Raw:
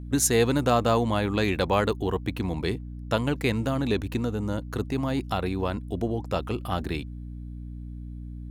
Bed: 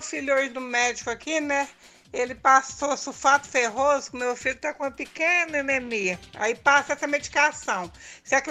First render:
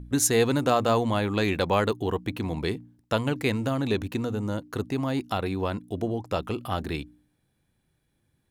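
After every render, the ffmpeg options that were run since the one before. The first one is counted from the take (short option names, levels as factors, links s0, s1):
-af "bandreject=f=60:t=h:w=4,bandreject=f=120:t=h:w=4,bandreject=f=180:t=h:w=4,bandreject=f=240:t=h:w=4,bandreject=f=300:t=h:w=4"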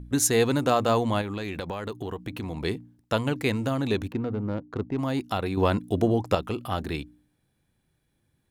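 -filter_complex "[0:a]asettb=1/sr,asplit=3[s0][s1][s2];[s0]atrim=end=1.214[s3];[s1]atrim=start=1.21:end=2.65,asetpts=PTS-STARTPTS,afade=t=in:d=0.004:c=qsin,afade=t=out:st=1.436:d=0.004:c=qsin,acompressor=threshold=0.0398:ratio=12:attack=3.2:release=140:knee=1:detection=peak[s4];[s2]atrim=start=2.646[s5];[s3][s4]acrossfade=d=0.004:c1=hsin:c2=qsin[s6];[s6][s5]acrossfade=d=0.004:c1=qsin:c2=hsin,asettb=1/sr,asplit=3[s7][s8][s9];[s7]atrim=end=4.124[s10];[s8]atrim=start=4.12:end=4.99,asetpts=PTS-STARTPTS,afade=t=in:d=0.004:c=qsin,afade=t=out:st=0.866:d=0.004:c=qsin,adynamicsmooth=sensitivity=1.5:basefreq=840[s11];[s9]atrim=start=4.986[s12];[s10][s11]acrossfade=d=0.004:c1=hsin:c2=qsin[s13];[s13][s12]acrossfade=d=0.004:c1=qsin:c2=hsin,asettb=1/sr,asplit=3[s14][s15][s16];[s14]atrim=end=5.574[s17];[s15]atrim=start=5.57:end=6.35,asetpts=PTS-STARTPTS,afade=t=in:d=0.004:c=qsin,afade=t=out:st=0.776:d=0.004:c=qsin,acontrast=57[s18];[s16]atrim=start=6.346[s19];[s17][s18]acrossfade=d=0.004:c1=hsin:c2=qsin[s20];[s20][s19]acrossfade=d=0.004:c1=qsin:c2=hsin"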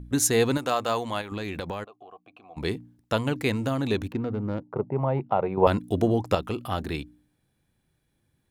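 -filter_complex "[0:a]asettb=1/sr,asplit=3[s0][s1][s2];[s0]atrim=end=0.574[s3];[s1]atrim=start=0.57:end=1.32,asetpts=PTS-STARTPTS,afade=t=in:d=0.004:c=qsin,afade=t=out:st=0.746:d=0.004:c=qsin,lowshelf=f=440:g=-11[s4];[s2]atrim=start=1.316[s5];[s3][s4]acrossfade=d=0.004:c1=hsin:c2=qsin[s6];[s6][s5]acrossfade=d=0.004:c1=qsin:c2=hsin,asplit=3[s7][s8][s9];[s7]afade=t=out:st=1.83:d=0.02[s10];[s8]asplit=3[s11][s12][s13];[s11]bandpass=f=730:t=q:w=8,volume=1[s14];[s12]bandpass=f=1090:t=q:w=8,volume=0.501[s15];[s13]bandpass=f=2440:t=q:w=8,volume=0.355[s16];[s14][s15][s16]amix=inputs=3:normalize=0,afade=t=in:st=1.83:d=0.02,afade=t=out:st=2.56:d=0.02[s17];[s9]afade=t=in:st=2.56:d=0.02[s18];[s10][s17][s18]amix=inputs=3:normalize=0,asettb=1/sr,asplit=3[s19][s20][s21];[s19]atrim=end=4.634[s22];[s20]atrim=start=4.63:end=5.67,asetpts=PTS-STARTPTS,afade=t=in:d=0.004:c=qsin,afade=t=out:st=1.036:d=0.004:c=qsin,highpass=140,equalizer=f=140:t=q:w=4:g=10,equalizer=f=280:t=q:w=4:g=-9,equalizer=f=410:t=q:w=4:g=5,equalizer=f=580:t=q:w=4:g=9,equalizer=f=870:t=q:w=4:g=9,equalizer=f=1700:t=q:w=4:g=-9,lowpass=f=2100:w=0.5412,lowpass=f=2100:w=1.3066[s23];[s21]atrim=start=5.666[s24];[s22][s23]acrossfade=d=0.004:c1=hsin:c2=qsin[s25];[s25][s24]acrossfade=d=0.004:c1=qsin:c2=hsin"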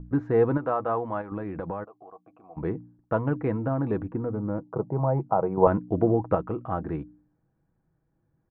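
-af "lowpass=f=1400:w=0.5412,lowpass=f=1400:w=1.3066,aecho=1:1:6.2:0.35"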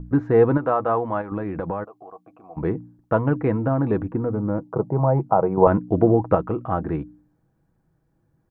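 -af "volume=1.88,alimiter=limit=0.708:level=0:latency=1"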